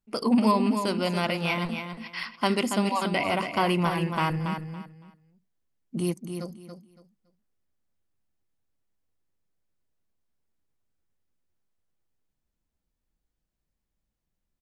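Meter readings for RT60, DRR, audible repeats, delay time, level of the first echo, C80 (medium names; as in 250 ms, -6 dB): no reverb, no reverb, 3, 281 ms, -7.5 dB, no reverb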